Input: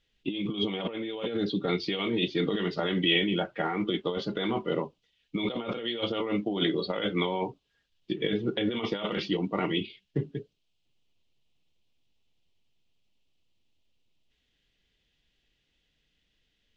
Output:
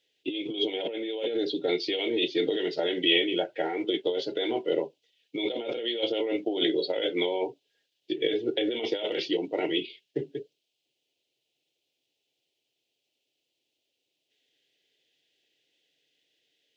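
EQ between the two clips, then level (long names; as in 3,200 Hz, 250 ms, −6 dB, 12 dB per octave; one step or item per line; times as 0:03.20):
high-pass filter 170 Hz 24 dB per octave
phaser with its sweep stopped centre 480 Hz, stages 4
+4.0 dB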